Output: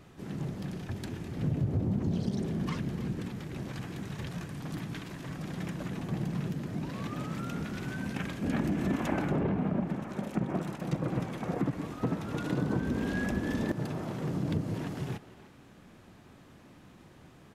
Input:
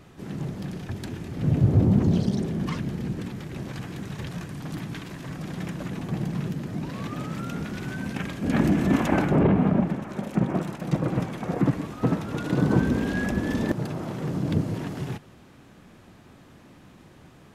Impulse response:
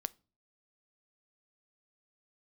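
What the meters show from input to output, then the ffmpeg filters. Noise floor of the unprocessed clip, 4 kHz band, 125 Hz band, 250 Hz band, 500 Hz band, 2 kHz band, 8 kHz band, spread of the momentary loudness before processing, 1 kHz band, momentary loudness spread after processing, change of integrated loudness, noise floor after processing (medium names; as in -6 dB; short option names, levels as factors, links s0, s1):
-51 dBFS, -5.0 dB, -7.5 dB, -7.0 dB, -7.0 dB, -6.0 dB, -5.0 dB, 14 LU, -6.5 dB, 9 LU, -7.0 dB, -55 dBFS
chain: -filter_complex "[0:a]acompressor=threshold=0.0794:ratio=6,asplit=2[s0][s1];[s1]adelay=300,highpass=300,lowpass=3400,asoftclip=type=hard:threshold=0.0501,volume=0.2[s2];[s0][s2]amix=inputs=2:normalize=0,volume=0.631"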